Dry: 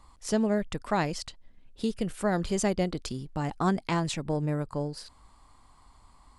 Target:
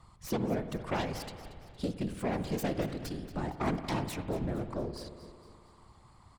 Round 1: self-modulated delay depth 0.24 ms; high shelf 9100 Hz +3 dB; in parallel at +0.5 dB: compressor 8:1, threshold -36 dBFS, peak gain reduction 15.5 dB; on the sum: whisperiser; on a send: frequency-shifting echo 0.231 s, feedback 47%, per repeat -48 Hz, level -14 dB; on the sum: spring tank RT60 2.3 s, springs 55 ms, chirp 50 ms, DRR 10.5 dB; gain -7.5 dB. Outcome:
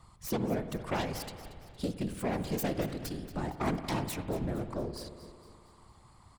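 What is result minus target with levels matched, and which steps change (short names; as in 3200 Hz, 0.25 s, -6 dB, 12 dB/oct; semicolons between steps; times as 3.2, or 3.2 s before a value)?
8000 Hz band +3.0 dB
change: high shelf 9100 Hz -6 dB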